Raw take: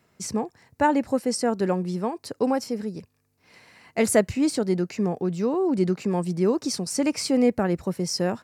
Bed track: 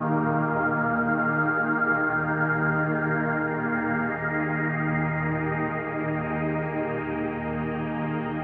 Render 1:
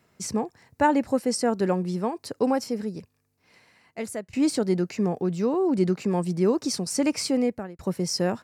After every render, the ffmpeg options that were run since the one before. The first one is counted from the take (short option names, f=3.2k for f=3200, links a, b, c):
-filter_complex "[0:a]asplit=3[a][b][c];[a]atrim=end=4.33,asetpts=PTS-STARTPTS,afade=t=out:st=2.88:d=1.45:silence=0.0944061[d];[b]atrim=start=4.33:end=7.79,asetpts=PTS-STARTPTS,afade=t=in:d=0.004:c=hsin:silence=0.0944061,afade=t=out:st=2.89:d=0.57[e];[c]atrim=start=7.79,asetpts=PTS-STARTPTS,afade=t=in:d=0.004:c=hsin[f];[d][e][f]concat=n=3:v=0:a=1"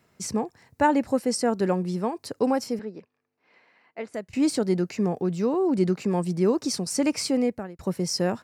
-filter_complex "[0:a]asettb=1/sr,asplit=3[a][b][c];[a]atrim=end=2.794[d];[b]atrim=start=2.79:end=4.14,asetpts=PTS-STARTPTS,afade=t=in:d=0.004:c=qsin,afade=t=out:st=1.346:d=0.004:c=qsin,highpass=300,lowpass=2.7k[e];[c]atrim=start=4.136[f];[d][e]acrossfade=d=0.004:c1=hsin:c2=qsin[g];[g][f]acrossfade=d=0.004:c1=qsin:c2=hsin"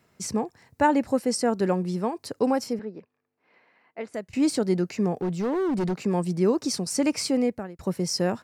-filter_complex "[0:a]asettb=1/sr,asplit=3[a][b][c];[a]atrim=end=2.734[d];[b]atrim=start=2.73:end=4.01,asetpts=PTS-STARTPTS,afade=t=in:d=0.004:c=qsin,afade=t=out:st=1.276:d=0.004:c=qsin,highshelf=f=4.2k:g=-10.5[e];[c]atrim=start=4.006[f];[d][e]acrossfade=d=0.004:c1=hsin:c2=qsin[g];[g][f]acrossfade=d=0.004:c1=qsin:c2=hsin,asettb=1/sr,asplit=3[h][i][j];[h]atrim=end=5.164[k];[i]atrim=start=5.16:end=5.96,asetpts=PTS-STARTPTS,afade=t=in:d=0.004:c=qsin,afade=t=out:st=0.796:d=0.004:c=qsin,asoftclip=type=hard:threshold=-22.5dB[l];[j]atrim=start=5.956[m];[k][l]acrossfade=d=0.004:c1=hsin:c2=qsin[n];[n][m]acrossfade=d=0.004:c1=qsin:c2=hsin"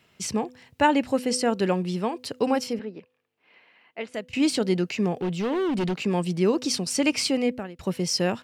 -af "equalizer=f=3k:t=o:w=0.83:g=13,bandreject=f=251:t=h:w=4,bandreject=f=502:t=h:w=4"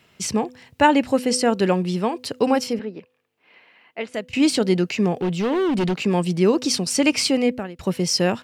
-af "volume=4.5dB"